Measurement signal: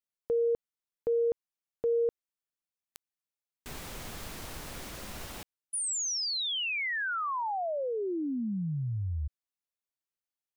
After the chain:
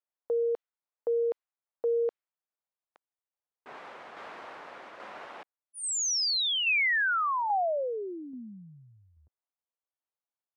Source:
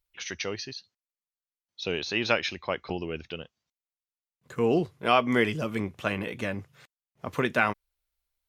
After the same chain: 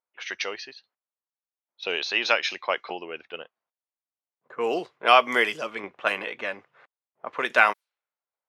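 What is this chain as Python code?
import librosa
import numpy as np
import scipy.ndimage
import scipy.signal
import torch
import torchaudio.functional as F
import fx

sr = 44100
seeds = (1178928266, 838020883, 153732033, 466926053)

y = scipy.signal.sosfilt(scipy.signal.butter(2, 610.0, 'highpass', fs=sr, output='sos'), x)
y = fx.env_lowpass(y, sr, base_hz=930.0, full_db=-26.5)
y = fx.tremolo_shape(y, sr, shape='saw_down', hz=1.2, depth_pct=40)
y = y * 10.0 ** (7.5 / 20.0)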